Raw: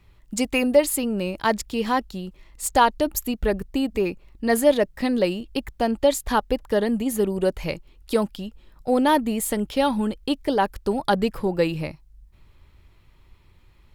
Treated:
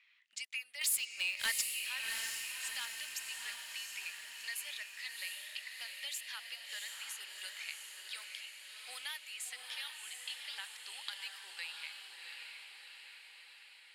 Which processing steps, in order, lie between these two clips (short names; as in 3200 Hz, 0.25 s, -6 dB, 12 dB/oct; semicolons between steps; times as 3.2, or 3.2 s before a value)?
low-pass opened by the level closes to 2700 Hz, open at -16.5 dBFS; Chebyshev high-pass 2100 Hz, order 3; compressor 2.5:1, threshold -52 dBFS, peak gain reduction 20 dB; 0.81–1.63 sample leveller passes 3; diffused feedback echo 0.714 s, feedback 59%, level -3.5 dB; gain +4 dB